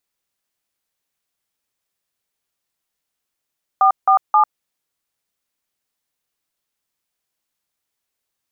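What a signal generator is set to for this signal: DTMF "447", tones 98 ms, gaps 0.167 s, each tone -12 dBFS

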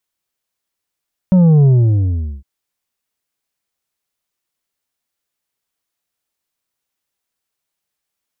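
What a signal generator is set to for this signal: sub drop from 190 Hz, over 1.11 s, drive 6 dB, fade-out 0.78 s, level -7 dB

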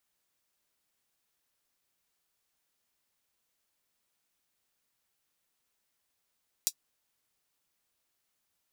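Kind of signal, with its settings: closed hi-hat, high-pass 5100 Hz, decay 0.07 s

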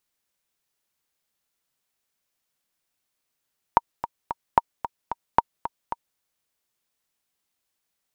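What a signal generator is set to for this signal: metronome 223 bpm, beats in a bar 3, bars 3, 935 Hz, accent 12.5 dB -1.5 dBFS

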